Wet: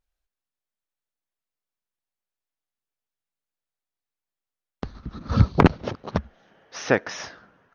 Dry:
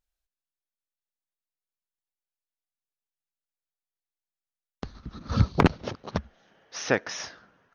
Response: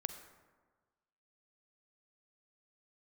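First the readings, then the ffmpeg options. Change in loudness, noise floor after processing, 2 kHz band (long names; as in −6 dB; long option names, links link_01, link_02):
+4.5 dB, below −85 dBFS, +3.0 dB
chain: -af "highshelf=frequency=3500:gain=-8,volume=4.5dB"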